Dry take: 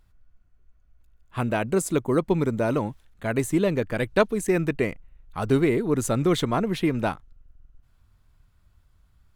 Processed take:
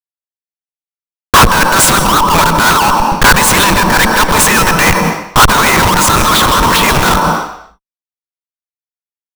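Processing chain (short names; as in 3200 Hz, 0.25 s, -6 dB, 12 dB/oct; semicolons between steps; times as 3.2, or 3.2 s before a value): elliptic high-pass 940 Hz, stop band 40 dB; bell 2100 Hz -10.5 dB 0.47 oct; in parallel at +1.5 dB: negative-ratio compressor -42 dBFS, ratio -1; on the sum: Schmitt trigger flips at -40 dBFS; on a send at -3 dB: reverb RT60 0.70 s, pre-delay 0.119 s; on the sum: maximiser +34.5 dB; gain -1 dB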